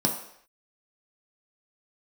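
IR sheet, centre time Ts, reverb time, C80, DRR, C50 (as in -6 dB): 25 ms, no single decay rate, 10.0 dB, 0.0 dB, 7.0 dB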